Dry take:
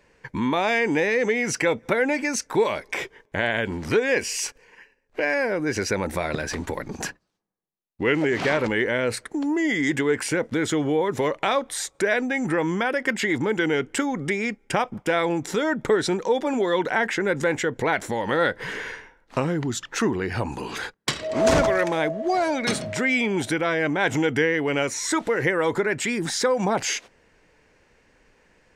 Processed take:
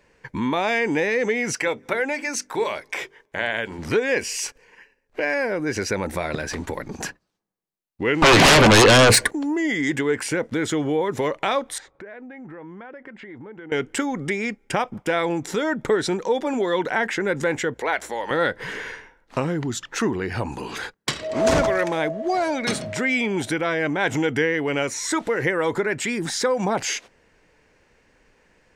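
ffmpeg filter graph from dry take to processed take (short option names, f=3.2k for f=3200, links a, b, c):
-filter_complex "[0:a]asettb=1/sr,asplit=3[a][b][c];[a]atrim=end=1.554[d];[b]atrim=start=1.55:end=3.79,asetpts=PTS-STARTPTS,afade=t=in:d=0.004:c=qsin,afade=t=out:st=2.236:d=0.004:c=qsin,lowshelf=f=330:g=-8.5,bandreject=f=50:t=h:w=6,bandreject=f=100:t=h:w=6,bandreject=f=150:t=h:w=6,bandreject=f=200:t=h:w=6,bandreject=f=250:t=h:w=6,bandreject=f=300:t=h:w=6,bandreject=f=350:t=h:w=6,bandreject=f=400:t=h:w=6[e];[c]atrim=start=3.786[f];[d][e]acrossfade=d=0.004:c1=hsin:c2=qsin[g];[g][f]acrossfade=d=0.004:c1=qsin:c2=hsin,asettb=1/sr,asplit=3[h][i][j];[h]atrim=end=8.224[k];[i]atrim=start=8.22:end=9.31,asetpts=PTS-STARTPTS,afade=t=in:d=0.004:c=qsin,afade=t=out:st=1.086:d=0.004:c=qsin,asuperstop=centerf=1300:order=20:qfactor=5.8,aeval=exprs='0.355*sin(PI/2*5.62*val(0)/0.355)':c=same[l];[j]atrim=start=9.306[m];[k][l]acrossfade=d=0.004:c1=hsin:c2=qsin[n];[n][m]acrossfade=d=0.004:c1=qsin:c2=hsin,asettb=1/sr,asplit=3[o][p][q];[o]atrim=end=11.784[r];[p]atrim=start=11.78:end=13.72,asetpts=PTS-STARTPTS,afade=t=in:d=0.004:c=qsin,afade=t=out:st=1.936:d=0.004:c=qsin,lowpass=1.8k,acompressor=threshold=-42dB:ratio=3:attack=3.2:release=140:knee=1:detection=peak[s];[q]atrim=start=13.716[t];[r][s]acrossfade=d=0.004:c1=hsin:c2=qsin[u];[u][t]acrossfade=d=0.004:c1=qsin:c2=hsin,asettb=1/sr,asplit=3[v][w][x];[v]atrim=end=17.744[y];[w]atrim=start=17.74:end=18.31,asetpts=PTS-STARTPTS,afade=t=in:d=0.004:c=qsin,afade=t=out:st=0.566:d=0.004:c=qsin,highpass=440,aeval=exprs='val(0)+0.00158*(sin(2*PI*60*n/s)+sin(2*PI*2*60*n/s)/2+sin(2*PI*3*60*n/s)/3+sin(2*PI*4*60*n/s)/4+sin(2*PI*5*60*n/s)/5)':c=same[z];[x]atrim=start=18.306[aa];[y][z]acrossfade=d=0.004:c1=hsin:c2=qsin[ab];[ab][aa]acrossfade=d=0.004:c1=qsin:c2=hsin"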